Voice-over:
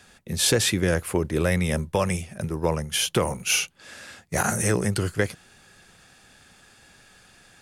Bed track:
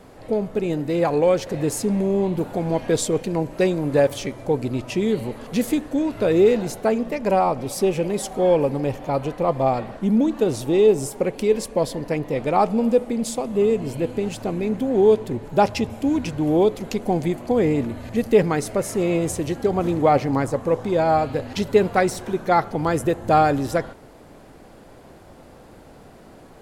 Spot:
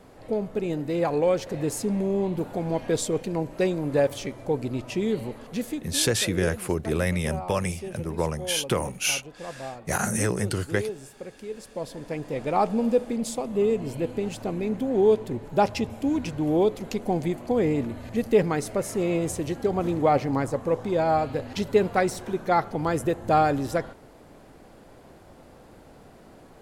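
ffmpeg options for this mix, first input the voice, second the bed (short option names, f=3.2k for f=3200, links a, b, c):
-filter_complex "[0:a]adelay=5550,volume=-2.5dB[a];[1:a]volume=8.5dB,afade=t=out:st=5.23:d=0.82:silence=0.237137,afade=t=in:st=11.54:d=1.12:silence=0.223872[b];[a][b]amix=inputs=2:normalize=0"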